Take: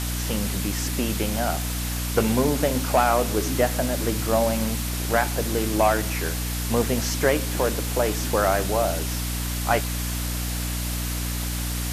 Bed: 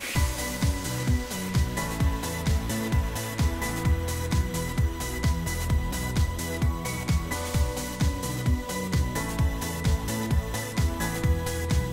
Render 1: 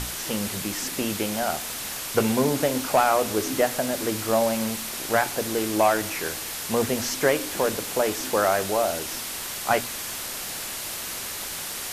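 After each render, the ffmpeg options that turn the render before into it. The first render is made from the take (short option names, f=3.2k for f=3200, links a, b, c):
-af "bandreject=f=60:t=h:w=6,bandreject=f=120:t=h:w=6,bandreject=f=180:t=h:w=6,bandreject=f=240:t=h:w=6,bandreject=f=300:t=h:w=6"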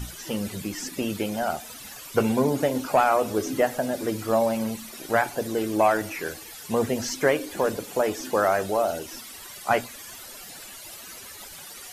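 -af "afftdn=nr=14:nf=-33"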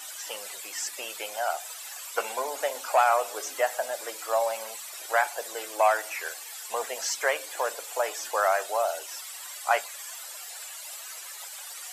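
-af "highpass=f=620:w=0.5412,highpass=f=620:w=1.3066,equalizer=f=7.7k:t=o:w=0.24:g=7"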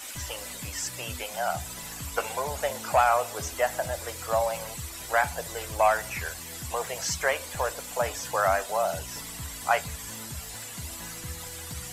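-filter_complex "[1:a]volume=-15.5dB[a];[0:a][a]amix=inputs=2:normalize=0"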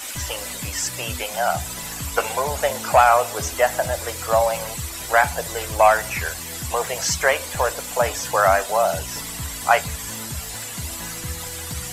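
-af "volume=7.5dB"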